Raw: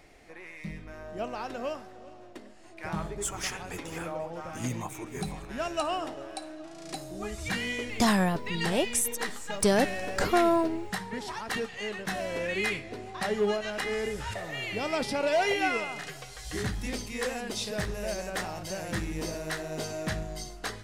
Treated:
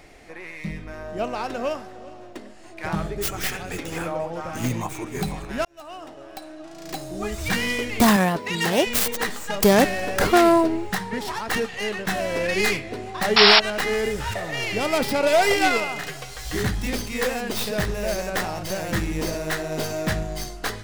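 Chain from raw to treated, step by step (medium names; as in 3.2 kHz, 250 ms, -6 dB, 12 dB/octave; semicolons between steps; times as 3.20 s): tracing distortion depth 0.42 ms; 2.95–3.92 s: peaking EQ 980 Hz -9.5 dB 0.37 oct; 5.65–7.20 s: fade in linear; 8.16–8.87 s: high-pass 210 Hz 6 dB/octave; 13.36–13.60 s: painted sound noise 640–5600 Hz -21 dBFS; trim +7.5 dB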